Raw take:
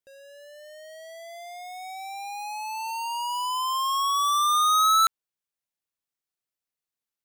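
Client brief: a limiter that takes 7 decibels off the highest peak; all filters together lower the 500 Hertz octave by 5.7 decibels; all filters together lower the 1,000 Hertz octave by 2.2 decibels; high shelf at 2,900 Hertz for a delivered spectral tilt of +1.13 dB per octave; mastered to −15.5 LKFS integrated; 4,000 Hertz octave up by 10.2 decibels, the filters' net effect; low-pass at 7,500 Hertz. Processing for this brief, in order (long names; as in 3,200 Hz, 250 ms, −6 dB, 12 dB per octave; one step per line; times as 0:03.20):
low-pass filter 7,500 Hz
parametric band 500 Hz −7.5 dB
parametric band 1,000 Hz −3.5 dB
high-shelf EQ 2,900 Hz +8 dB
parametric band 4,000 Hz +6.5 dB
level +8 dB
brickwall limiter −6.5 dBFS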